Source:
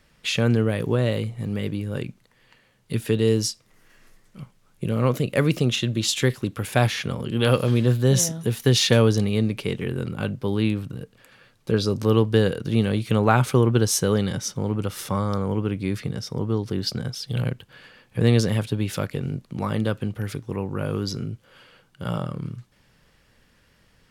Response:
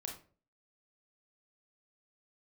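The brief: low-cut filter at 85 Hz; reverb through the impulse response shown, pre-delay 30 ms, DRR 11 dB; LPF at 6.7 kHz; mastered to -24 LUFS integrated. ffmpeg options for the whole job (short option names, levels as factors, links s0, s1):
-filter_complex "[0:a]highpass=85,lowpass=6700,asplit=2[s0][s1];[1:a]atrim=start_sample=2205,adelay=30[s2];[s1][s2]afir=irnorm=-1:irlink=0,volume=0.355[s3];[s0][s3]amix=inputs=2:normalize=0"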